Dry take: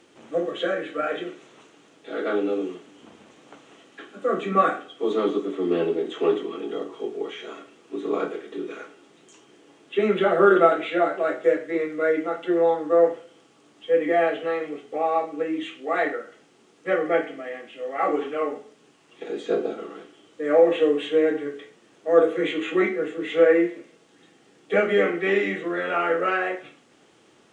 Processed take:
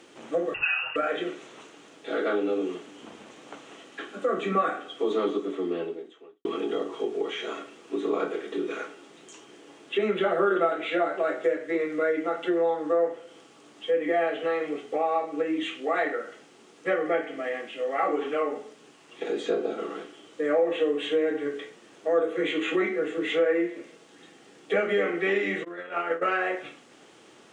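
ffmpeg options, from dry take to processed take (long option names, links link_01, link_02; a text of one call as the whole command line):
ffmpeg -i in.wav -filter_complex "[0:a]asettb=1/sr,asplit=3[link_01][link_02][link_03];[link_01]atrim=end=0.544[link_04];[link_02]atrim=start=0.54:end=0.96,asetpts=PTS-STARTPTS,afade=type=in:duration=0.004:curve=qsin,afade=type=out:start_time=0.416:duration=0.004:curve=qsin,lowpass=frequency=2600:width_type=q:width=0.5098,lowpass=frequency=2600:width_type=q:width=0.6013,lowpass=frequency=2600:width_type=q:width=0.9,lowpass=frequency=2600:width_type=q:width=2.563,afreqshift=-3100[link_05];[link_03]atrim=start=0.956[link_06];[link_04][link_05]acrossfade=duration=0.004:curve1=hsin:curve2=qsin[link_07];[link_07][link_06]acrossfade=duration=0.004:curve1=qsin:curve2=hsin,asplit=3[link_08][link_09][link_10];[link_08]afade=type=out:start_time=25.63:duration=0.02[link_11];[link_09]agate=range=-33dB:threshold=-17dB:ratio=3:release=100:detection=peak,afade=type=in:start_time=25.63:duration=0.02,afade=type=out:start_time=26.21:duration=0.02[link_12];[link_10]afade=type=in:start_time=26.21:duration=0.02[link_13];[link_11][link_12][link_13]amix=inputs=3:normalize=0,asplit=2[link_14][link_15];[link_14]atrim=end=6.45,asetpts=PTS-STARTPTS,afade=type=out:start_time=5.28:duration=1.17:curve=qua[link_16];[link_15]atrim=start=6.45,asetpts=PTS-STARTPTS,afade=type=in:duration=0.004:curve=hsin[link_17];[link_16][link_17]concat=n=2:v=0:a=1,lowshelf=frequency=150:gain=-8,acompressor=threshold=-30dB:ratio=2.5,volume=4.5dB" out.wav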